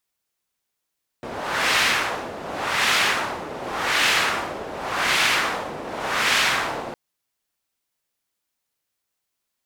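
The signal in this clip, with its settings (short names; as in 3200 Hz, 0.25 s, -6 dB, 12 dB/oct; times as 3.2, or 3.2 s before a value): wind-like swept noise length 5.71 s, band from 550 Hz, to 2400 Hz, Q 1, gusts 5, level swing 14 dB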